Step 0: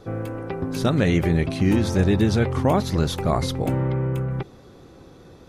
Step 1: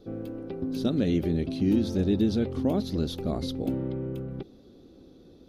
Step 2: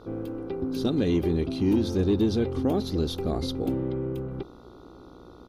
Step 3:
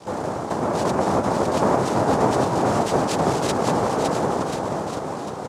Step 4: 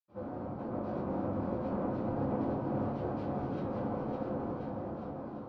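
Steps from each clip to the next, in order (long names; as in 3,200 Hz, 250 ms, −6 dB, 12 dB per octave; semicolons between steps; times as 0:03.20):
octave-band graphic EQ 125/250/1,000/2,000/4,000/8,000 Hz −8/+7/−11/−10/+5/−11 dB; level −6 dB
comb filter 2.5 ms, depth 34%; hum with harmonics 60 Hz, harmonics 24, −55 dBFS −2 dB per octave; in parallel at −10.5 dB: sine wavefolder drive 4 dB, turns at −13.5 dBFS; on the sum: level −2.5 dB
downward compressor, threshold −25 dBFS, peak gain reduction 7 dB; cochlear-implant simulation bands 2; bouncing-ball delay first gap 560 ms, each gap 0.85×, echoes 5; level +7 dB
in parallel at −3.5 dB: gain into a clipping stage and back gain 23.5 dB; on the sum: high-frequency loss of the air 330 metres; convolution reverb RT60 0.60 s, pre-delay 77 ms; level −3 dB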